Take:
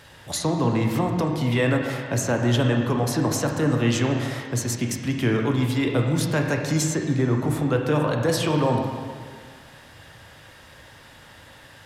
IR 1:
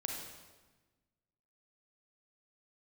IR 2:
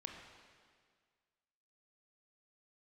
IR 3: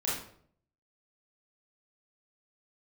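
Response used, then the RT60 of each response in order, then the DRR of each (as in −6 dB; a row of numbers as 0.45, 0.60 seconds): 2; 1.2, 1.8, 0.60 seconds; 0.0, 1.5, −7.5 decibels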